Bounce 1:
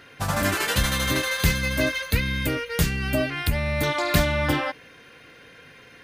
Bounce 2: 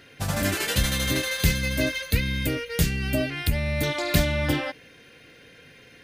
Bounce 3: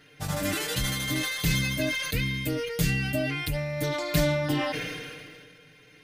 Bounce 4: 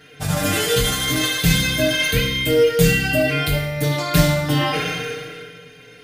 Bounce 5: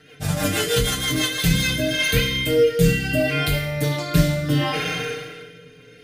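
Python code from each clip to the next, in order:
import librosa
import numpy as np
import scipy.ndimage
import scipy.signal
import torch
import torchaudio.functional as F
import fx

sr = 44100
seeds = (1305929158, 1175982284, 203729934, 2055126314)

y1 = fx.peak_eq(x, sr, hz=1100.0, db=-8.5, octaves=1.1)
y2 = y1 + 0.89 * np.pad(y1, (int(6.6 * sr / 1000.0), 0))[:len(y1)]
y2 = fx.sustainer(y2, sr, db_per_s=28.0)
y2 = y2 * 10.0 ** (-7.0 / 20.0)
y3 = fx.rev_fdn(y2, sr, rt60_s=0.87, lf_ratio=0.8, hf_ratio=0.85, size_ms=13.0, drr_db=-1.0)
y3 = y3 * 10.0 ** (6.5 / 20.0)
y4 = fx.rotary_switch(y3, sr, hz=6.3, then_hz=0.7, switch_at_s=1.15)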